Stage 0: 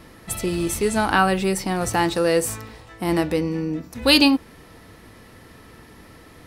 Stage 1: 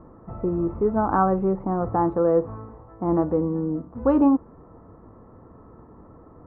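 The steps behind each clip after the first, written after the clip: Chebyshev low-pass 1200 Hz, order 4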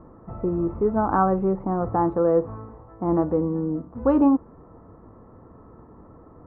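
nothing audible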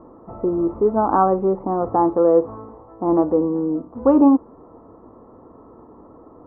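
band shelf 530 Hz +10 dB 2.7 oct; gain -5 dB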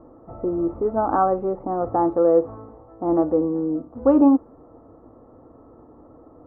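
thirty-one-band EQ 200 Hz -9 dB, 400 Hz -6 dB, 1000 Hz -9 dB; mismatched tape noise reduction decoder only

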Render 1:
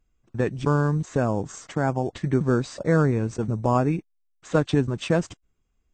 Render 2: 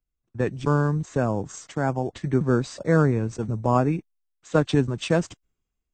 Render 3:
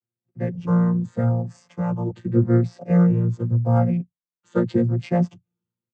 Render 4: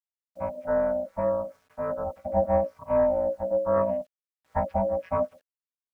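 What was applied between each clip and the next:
three-band expander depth 40%
chord vocoder bare fifth, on A#2; endless flanger 5.9 ms +0.85 Hz; gain +6 dB
ring modulator 430 Hz; EQ curve 110 Hz 0 dB, 180 Hz +5 dB, 320 Hz -14 dB, 460 Hz +10 dB, 720 Hz +4 dB, 1300 Hz +7 dB, 2500 Hz -1 dB, 3800 Hz -18 dB, 5500 Hz -9 dB, 7800 Hz -22 dB; bit-crush 10-bit; gain -7 dB

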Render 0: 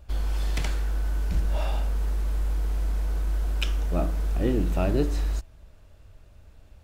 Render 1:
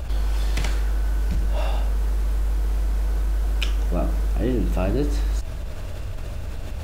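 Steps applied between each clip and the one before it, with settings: fast leveller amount 70%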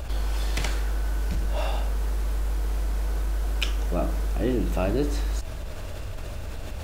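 tone controls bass -4 dB, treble +1 dB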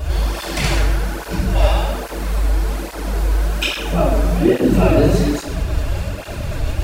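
shoebox room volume 480 m³, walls mixed, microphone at 3.2 m; tape flanging out of phase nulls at 1.2 Hz, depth 6 ms; gain +6.5 dB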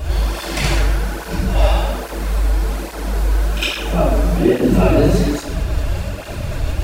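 pre-echo 56 ms -12.5 dB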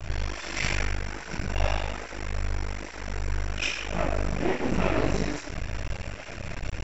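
half-wave rectifier; rippled Chebyshev low-pass 7600 Hz, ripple 9 dB

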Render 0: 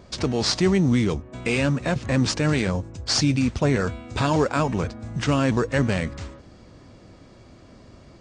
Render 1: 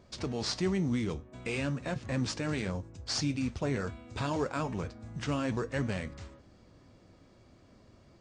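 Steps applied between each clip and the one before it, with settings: flange 0.49 Hz, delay 8.6 ms, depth 3.5 ms, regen -76%; gain -6.5 dB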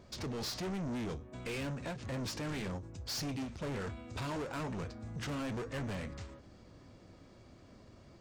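soft clip -37.5 dBFS, distortion -6 dB; ending taper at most 120 dB/s; gain +2 dB

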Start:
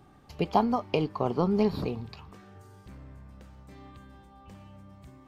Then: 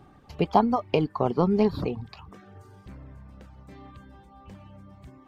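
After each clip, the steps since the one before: reverb removal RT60 0.56 s; high shelf 4700 Hz -7 dB; gain +4 dB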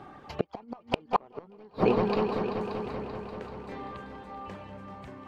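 overdrive pedal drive 18 dB, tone 1600 Hz, clips at -5.5 dBFS; multi-head echo 0.193 s, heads all three, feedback 59%, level -14 dB; flipped gate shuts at -12 dBFS, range -33 dB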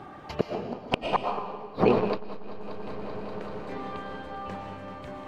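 digital reverb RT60 1.2 s, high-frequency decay 0.95×, pre-delay 75 ms, DRR 3.5 dB; core saturation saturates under 280 Hz; gain +3.5 dB

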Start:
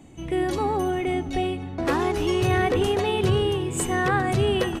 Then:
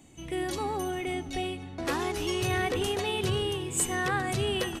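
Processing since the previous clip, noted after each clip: high shelf 2400 Hz +10.5 dB; gain -8 dB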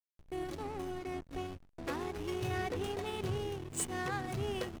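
reverse echo 33 ms -22 dB; backlash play -27 dBFS; gain -6.5 dB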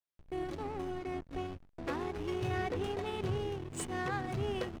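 LPF 3500 Hz 6 dB/oct; gain +1.5 dB

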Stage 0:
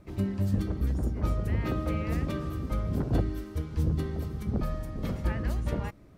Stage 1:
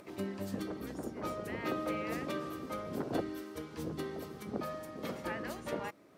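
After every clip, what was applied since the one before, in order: HPF 330 Hz 12 dB/oct; upward compressor, threshold -49 dBFS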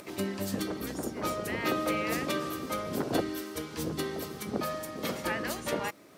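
high shelf 2500 Hz +9 dB; gain +5 dB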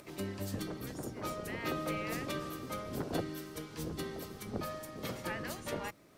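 octaver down 1 oct, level -3 dB; gain -7 dB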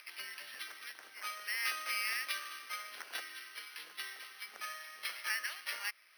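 Butterworth band-pass 2500 Hz, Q 1.2; careless resampling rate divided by 6×, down filtered, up hold; gain +9 dB

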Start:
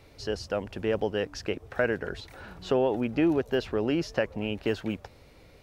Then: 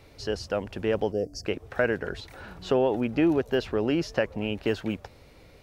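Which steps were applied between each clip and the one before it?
spectral gain 1.12–1.45, 740–4400 Hz -23 dB; gain +1.5 dB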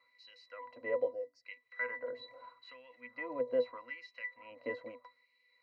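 dynamic EQ 1900 Hz, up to +6 dB, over -48 dBFS, Q 1.8; octave resonator B, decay 0.15 s; LFO high-pass sine 0.79 Hz 500–2600 Hz; gain +4 dB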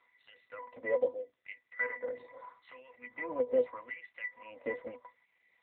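gain +3.5 dB; AMR-NB 7.95 kbps 8000 Hz

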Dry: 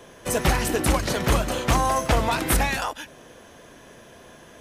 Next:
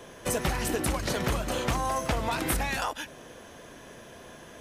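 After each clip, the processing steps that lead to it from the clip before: compressor, threshold -25 dBFS, peak gain reduction 9.5 dB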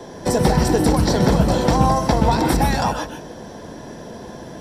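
reverb RT60 0.20 s, pre-delay 0.123 s, DRR 6 dB; gain +1 dB

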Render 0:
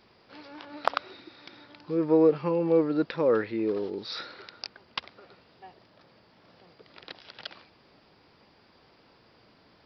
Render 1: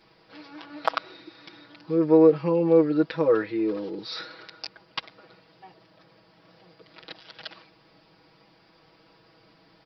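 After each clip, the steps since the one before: comb 6.2 ms, depth 100%; gain -1.5 dB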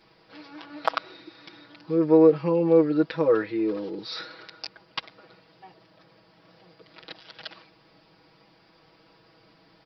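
nothing audible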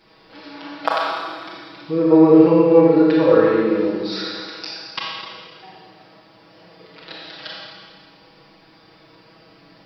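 Schroeder reverb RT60 1.7 s, combs from 28 ms, DRR -4.5 dB; gain +3 dB

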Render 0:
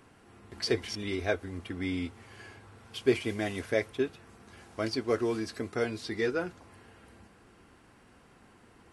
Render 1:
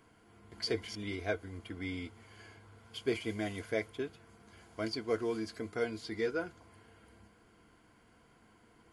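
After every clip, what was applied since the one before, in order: ripple EQ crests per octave 1.8, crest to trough 7 dB; gain -6 dB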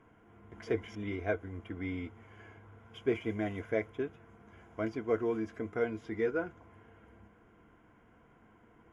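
running mean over 10 samples; gain +2.5 dB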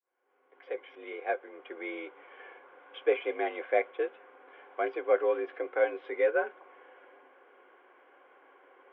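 opening faded in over 2.11 s; mistuned SSB +60 Hz 340–3400 Hz; gain +6 dB

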